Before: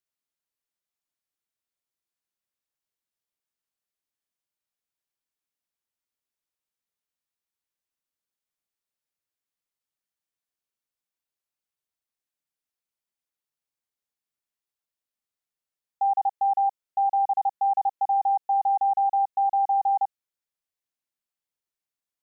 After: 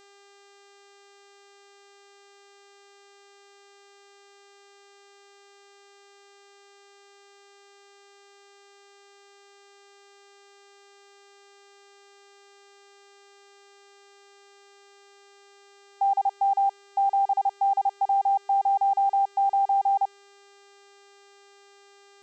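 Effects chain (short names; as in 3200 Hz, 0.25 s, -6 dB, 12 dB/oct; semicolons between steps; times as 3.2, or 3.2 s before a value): buzz 400 Hz, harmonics 20, -55 dBFS -4 dB/oct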